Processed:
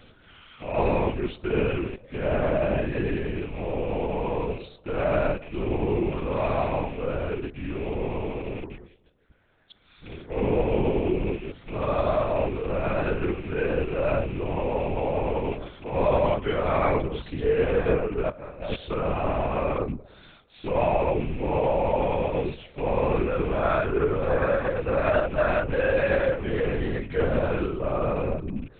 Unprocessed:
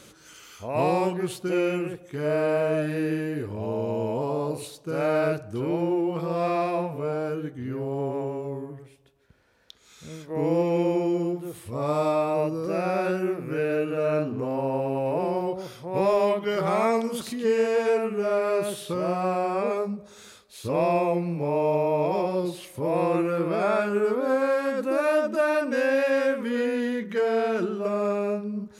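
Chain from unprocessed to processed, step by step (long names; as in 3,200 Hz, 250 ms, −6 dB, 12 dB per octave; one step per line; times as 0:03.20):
loose part that buzzes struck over −40 dBFS, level −33 dBFS
0:18.30–0:18.76: compressor whose output falls as the input rises −32 dBFS, ratio −0.5
linear-prediction vocoder at 8 kHz whisper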